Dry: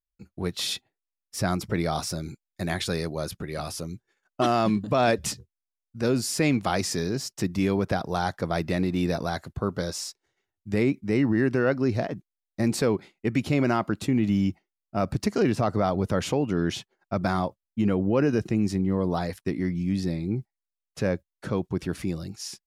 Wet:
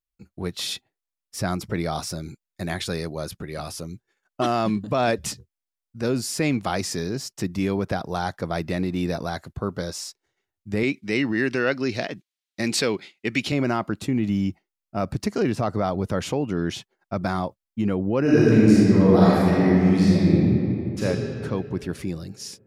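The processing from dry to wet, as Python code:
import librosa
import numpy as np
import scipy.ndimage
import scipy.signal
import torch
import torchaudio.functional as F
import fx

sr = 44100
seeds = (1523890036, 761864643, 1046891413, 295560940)

y = fx.weighting(x, sr, curve='D', at=(10.83, 13.52))
y = fx.reverb_throw(y, sr, start_s=18.22, length_s=2.81, rt60_s=2.7, drr_db=-9.5)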